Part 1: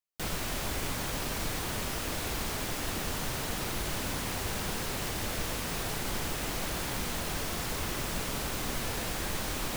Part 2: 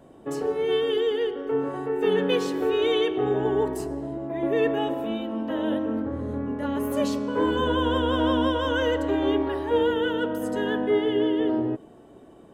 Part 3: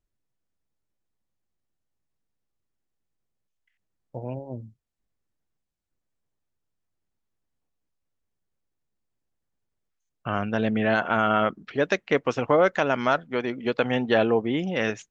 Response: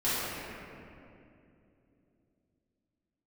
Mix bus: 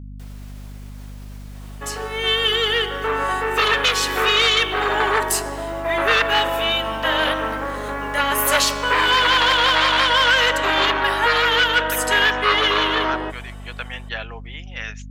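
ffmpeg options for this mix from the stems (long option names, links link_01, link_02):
-filter_complex "[0:a]alimiter=level_in=2.5dB:limit=-24dB:level=0:latency=1:release=202,volume=-2.5dB,volume=-11.5dB[link_01];[1:a]dynaudnorm=framelen=310:gausssize=7:maxgain=11dB,aeval=exprs='0.841*sin(PI/2*2.51*val(0)/0.841)':channel_layout=same,adelay=1550,volume=2dB[link_02];[2:a]volume=0dB[link_03];[link_02][link_03]amix=inputs=2:normalize=0,highpass=1400,alimiter=limit=-6dB:level=0:latency=1:release=332,volume=0dB[link_04];[link_01][link_04]amix=inputs=2:normalize=0,aeval=exprs='val(0)+0.02*(sin(2*PI*50*n/s)+sin(2*PI*2*50*n/s)/2+sin(2*PI*3*50*n/s)/3+sin(2*PI*4*50*n/s)/4+sin(2*PI*5*50*n/s)/5)':channel_layout=same"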